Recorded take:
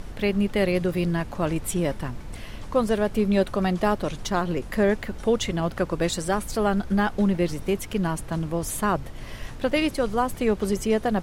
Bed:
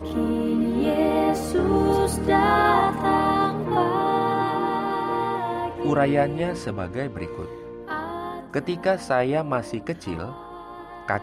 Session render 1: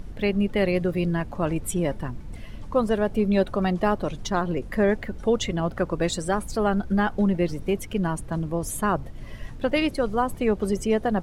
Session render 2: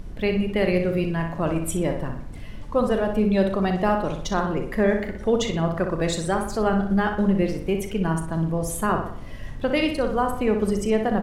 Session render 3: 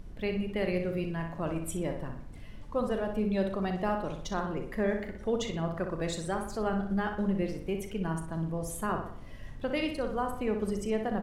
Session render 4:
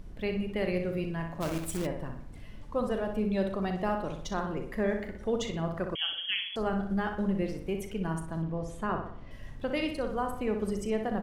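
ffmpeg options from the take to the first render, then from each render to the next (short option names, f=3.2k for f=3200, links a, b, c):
-af "afftdn=nr=9:nf=-38"
-filter_complex "[0:a]asplit=2[a][b];[b]adelay=37,volume=-12dB[c];[a][c]amix=inputs=2:normalize=0,asplit=2[d][e];[e]adelay=61,lowpass=f=4k:p=1,volume=-6dB,asplit=2[f][g];[g]adelay=61,lowpass=f=4k:p=1,volume=0.51,asplit=2[h][i];[i]adelay=61,lowpass=f=4k:p=1,volume=0.51,asplit=2[j][k];[k]adelay=61,lowpass=f=4k:p=1,volume=0.51,asplit=2[l][m];[m]adelay=61,lowpass=f=4k:p=1,volume=0.51,asplit=2[n][o];[o]adelay=61,lowpass=f=4k:p=1,volume=0.51[p];[d][f][h][j][l][n][p]amix=inputs=7:normalize=0"
-af "volume=-9dB"
-filter_complex "[0:a]asplit=3[a][b][c];[a]afade=t=out:st=1.4:d=0.02[d];[b]acrusher=bits=2:mode=log:mix=0:aa=0.000001,afade=t=in:st=1.4:d=0.02,afade=t=out:st=1.85:d=0.02[e];[c]afade=t=in:st=1.85:d=0.02[f];[d][e][f]amix=inputs=3:normalize=0,asettb=1/sr,asplit=3[g][h][i];[g]atrim=end=5.954[j];[h]atrim=start=5.95:end=6.56,asetpts=PTS-STARTPTS,afade=t=in:d=0.004:c=qsin,afade=t=out:st=0.606:d=0.004:c=qsin,lowpass=f=2.9k:t=q:w=0.5098,lowpass=f=2.9k:t=q:w=0.6013,lowpass=f=2.9k:t=q:w=0.9,lowpass=f=2.9k:t=q:w=2.563,afreqshift=-3400[k];[i]atrim=start=6.556[l];[j][k]acrossfade=d=0.004:c1=hsin:c2=qsin[m];[m][l]acrossfade=d=0.004:c1=qsin:c2=hsin,asettb=1/sr,asplit=3[n][o][p];[n]atrim=end=8.424[q];[o]atrim=start=8.42:end=9.31,asetpts=PTS-STARTPTS,afade=t=in:d=0.004:c=qsin,afade=t=out:st=0.886:d=0.004:c=qsin,lowpass=4.2k[r];[p]atrim=start=9.306[s];[q][r]acrossfade=d=0.004:c1=hsin:c2=qsin[t];[t][s]acrossfade=d=0.004:c1=qsin:c2=hsin"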